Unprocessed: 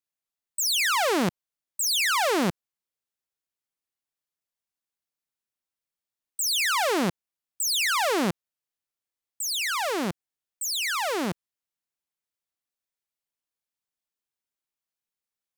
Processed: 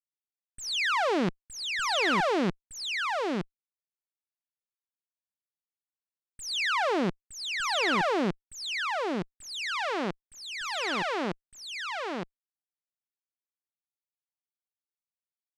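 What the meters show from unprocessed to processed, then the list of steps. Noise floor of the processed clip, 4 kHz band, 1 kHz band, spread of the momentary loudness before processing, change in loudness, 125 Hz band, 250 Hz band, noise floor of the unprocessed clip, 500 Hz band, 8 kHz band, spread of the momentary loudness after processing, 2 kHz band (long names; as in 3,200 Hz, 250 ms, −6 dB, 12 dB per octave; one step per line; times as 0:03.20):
below −85 dBFS, −4.0 dB, −1.0 dB, 11 LU, −4.5 dB, −1.5 dB, −1.0 dB, below −85 dBFS, −0.5 dB, −12.0 dB, 12 LU, −1.0 dB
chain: harmonic generator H 2 −9 dB, 7 −18 dB, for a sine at −18 dBFS
low-pass filter 3,900 Hz 12 dB per octave
single-tap delay 915 ms −3.5 dB
level −3 dB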